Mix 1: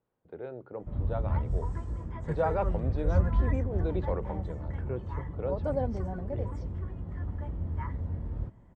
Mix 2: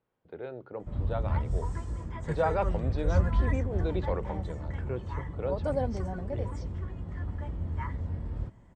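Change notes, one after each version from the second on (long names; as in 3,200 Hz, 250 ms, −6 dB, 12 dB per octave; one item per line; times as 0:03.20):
master: add high-shelf EQ 2,200 Hz +10.5 dB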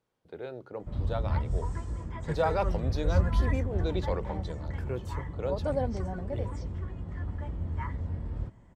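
speech: remove low-pass filter 2,700 Hz 12 dB per octave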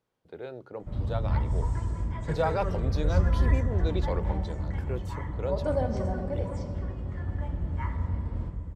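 reverb: on, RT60 2.5 s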